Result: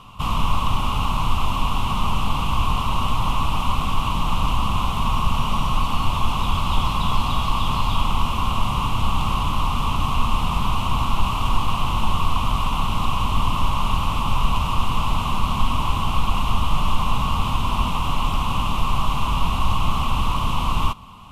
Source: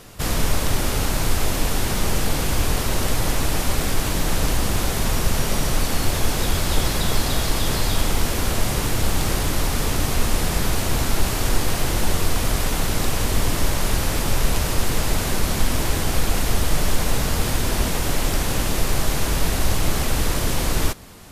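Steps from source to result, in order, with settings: FFT filter 230 Hz 0 dB, 340 Hz -11 dB, 490 Hz -12 dB, 690 Hz -5 dB, 1.1 kHz +14 dB, 1.7 kHz -20 dB, 2.8 kHz +6 dB, 4.6 kHz -12 dB, 13 kHz -16 dB

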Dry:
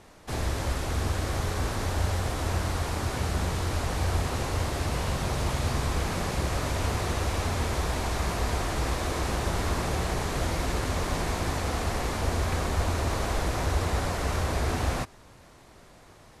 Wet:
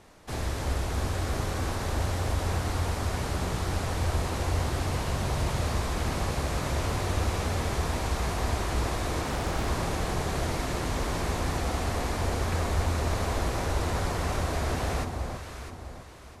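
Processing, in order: on a send: echo whose repeats swap between lows and highs 328 ms, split 1.1 kHz, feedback 60%, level -4 dB; 9.22–9.68 s: on the sum: loudspeaker Doppler distortion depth 0.68 ms; trim -2 dB

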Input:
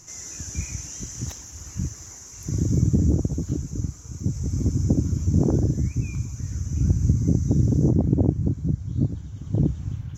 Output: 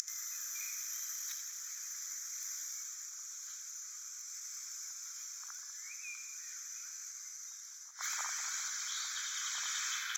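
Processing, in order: tracing distortion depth 0.035 ms; steep high-pass 1.3 kHz 48 dB/octave; in parallel at +1 dB: compression, threshold -48 dBFS, peak gain reduction 13 dB; on the sum: inverted gate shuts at -38 dBFS, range -25 dB; on a send: two-band feedback delay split 2.1 kHz, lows 195 ms, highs 81 ms, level -10 dB; on the sum: gain riding within 3 dB 2 s; Butterworth band-stop 2.8 kHz, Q 5.4; trim +18 dB

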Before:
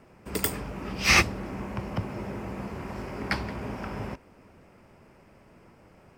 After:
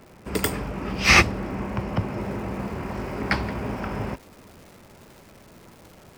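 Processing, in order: treble shelf 5.8 kHz -7 dB; crackle 250 per s -47 dBFS, from 2.21 s 600 per s; trim +5.5 dB

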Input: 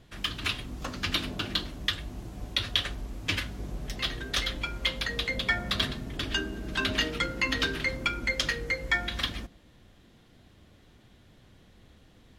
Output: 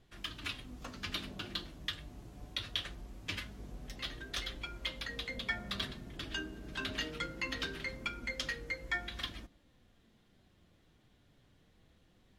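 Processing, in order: flange 0.22 Hz, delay 2.5 ms, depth 4.7 ms, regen +73%; trim -5.5 dB

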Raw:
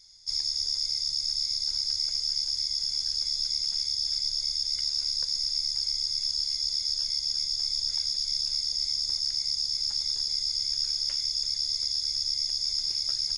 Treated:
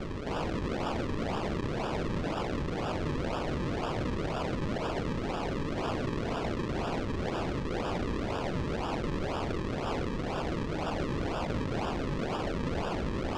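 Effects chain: high-pass 170 Hz 24 dB/octave; peak limiter -23 dBFS, peak gain reduction 6.5 dB; integer overflow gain 34 dB; flange 1.8 Hz, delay 4.7 ms, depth 8.5 ms, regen -57%; sine folder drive 11 dB, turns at -35 dBFS; decimation with a swept rate 42×, swing 100% 2 Hz; distance through air 120 m; trim +8 dB

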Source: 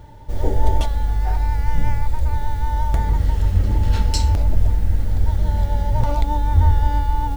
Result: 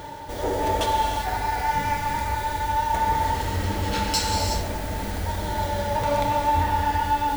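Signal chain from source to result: high-pass 570 Hz 6 dB/octave; reverse; upward compressor, threshold -33 dBFS; reverse; saturation -25 dBFS, distortion -16 dB; gated-style reverb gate 410 ms flat, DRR -0.5 dB; trim +6 dB

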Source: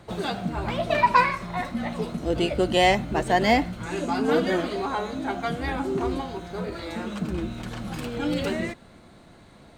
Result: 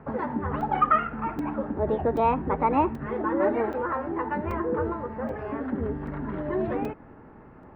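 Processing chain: low-pass 1.3 kHz 24 dB/octave; band-stop 570 Hz, Q 12; in parallel at -2 dB: compression, threshold -33 dBFS, peak gain reduction 17.5 dB; on the sum: tape speed +26%; crackling interface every 0.78 s, samples 128, zero, from 0.61 s; trim -2.5 dB

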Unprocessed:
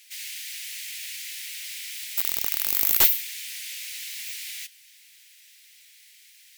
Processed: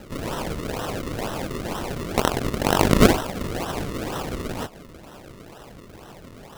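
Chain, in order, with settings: high-pass 1.5 kHz; in parallel at +2.5 dB: compression, threshold -39 dBFS, peak gain reduction 24 dB; on the sum: decimation with a swept rate 38×, swing 100% 2.1 Hz; trim +3 dB

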